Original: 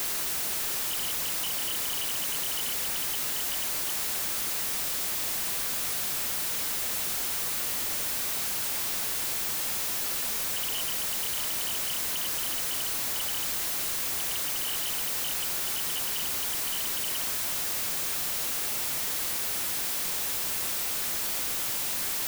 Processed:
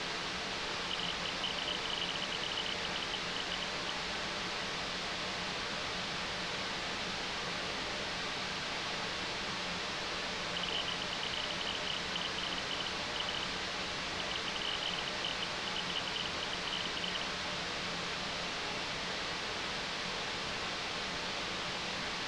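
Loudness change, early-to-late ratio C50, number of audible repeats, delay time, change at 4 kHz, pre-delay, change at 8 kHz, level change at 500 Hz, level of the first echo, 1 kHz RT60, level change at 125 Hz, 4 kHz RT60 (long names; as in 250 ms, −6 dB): −8.5 dB, 14.5 dB, no echo audible, no echo audible, −1.0 dB, 3 ms, −17.0 dB, +2.0 dB, no echo audible, 0.50 s, +1.5 dB, 0.45 s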